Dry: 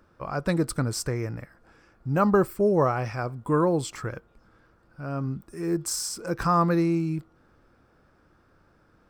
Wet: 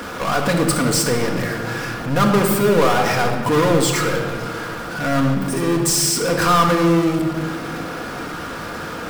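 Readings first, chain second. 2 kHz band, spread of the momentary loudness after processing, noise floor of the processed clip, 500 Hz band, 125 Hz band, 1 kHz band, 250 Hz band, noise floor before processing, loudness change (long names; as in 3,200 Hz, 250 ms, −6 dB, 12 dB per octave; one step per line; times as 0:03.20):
+14.5 dB, 12 LU, −29 dBFS, +8.0 dB, +7.0 dB, +9.5 dB, +8.0 dB, −62 dBFS, +7.5 dB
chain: high-pass filter 350 Hz 6 dB per octave
power curve on the samples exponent 0.35
rectangular room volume 2,600 cubic metres, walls mixed, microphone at 1.8 metres
level −1.5 dB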